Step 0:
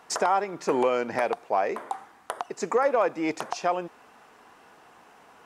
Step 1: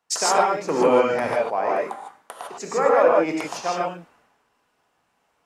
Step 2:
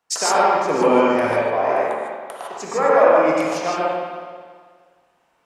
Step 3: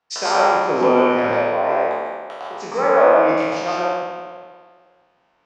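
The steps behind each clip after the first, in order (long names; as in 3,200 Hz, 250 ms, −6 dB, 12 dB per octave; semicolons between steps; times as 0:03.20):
reverb whose tail is shaped and stops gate 180 ms rising, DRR −2.5 dB; multiband upward and downward expander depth 70%
spring reverb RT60 1.7 s, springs 44/53 ms, chirp 45 ms, DRR 0 dB; level +1 dB
peak hold with a decay on every bin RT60 1.09 s; low-pass filter 5,300 Hz 24 dB per octave; level −2 dB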